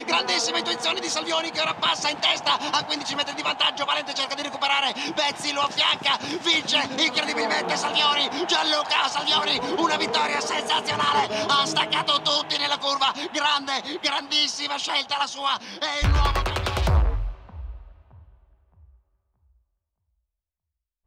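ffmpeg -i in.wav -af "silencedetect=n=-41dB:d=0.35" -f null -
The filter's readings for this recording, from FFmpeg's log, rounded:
silence_start: 18.19
silence_end: 21.06 | silence_duration: 2.88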